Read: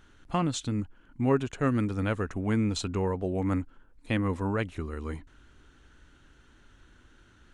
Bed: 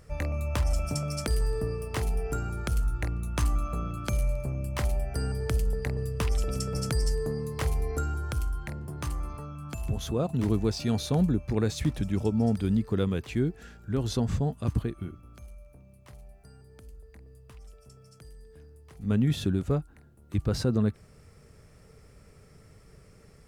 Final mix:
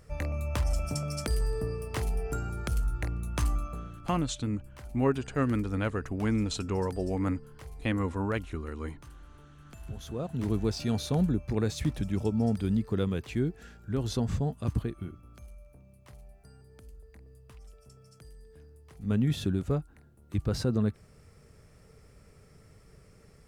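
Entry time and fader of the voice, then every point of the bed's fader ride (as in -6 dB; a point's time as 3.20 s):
3.75 s, -1.5 dB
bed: 3.51 s -2 dB
4.31 s -17.5 dB
9.24 s -17.5 dB
10.63 s -2 dB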